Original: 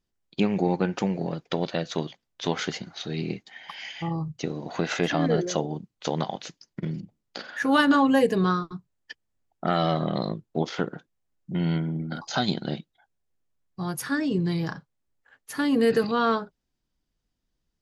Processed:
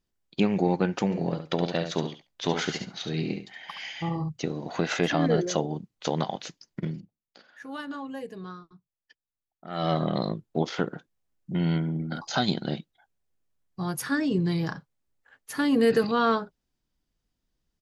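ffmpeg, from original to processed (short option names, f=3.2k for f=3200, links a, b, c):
-filter_complex "[0:a]asplit=3[a][b][c];[a]afade=t=out:st=1.1:d=0.02[d];[b]aecho=1:1:70|140:0.398|0.0597,afade=t=in:st=1.1:d=0.02,afade=t=out:st=4.28:d=0.02[e];[c]afade=t=in:st=4.28:d=0.02[f];[d][e][f]amix=inputs=3:normalize=0,asplit=3[g][h][i];[g]atrim=end=7.09,asetpts=PTS-STARTPTS,afade=t=out:st=6.85:d=0.24:silence=0.141254[j];[h]atrim=start=7.09:end=9.69,asetpts=PTS-STARTPTS,volume=-17dB[k];[i]atrim=start=9.69,asetpts=PTS-STARTPTS,afade=t=in:d=0.24:silence=0.141254[l];[j][k][l]concat=n=3:v=0:a=1"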